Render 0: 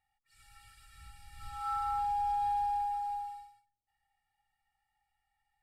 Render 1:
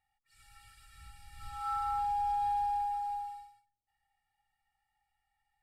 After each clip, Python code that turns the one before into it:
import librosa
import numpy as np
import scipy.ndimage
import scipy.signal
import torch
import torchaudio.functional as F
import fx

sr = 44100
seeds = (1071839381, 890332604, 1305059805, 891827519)

y = x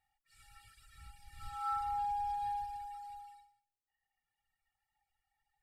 y = fx.dereverb_blind(x, sr, rt60_s=1.8)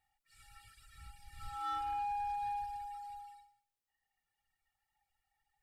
y = 10.0 ** (-33.5 / 20.0) * np.tanh(x / 10.0 ** (-33.5 / 20.0))
y = y * librosa.db_to_amplitude(1.0)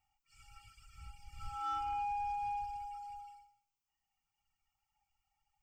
y = fx.fixed_phaser(x, sr, hz=2600.0, stages=8)
y = y * librosa.db_to_amplitude(2.5)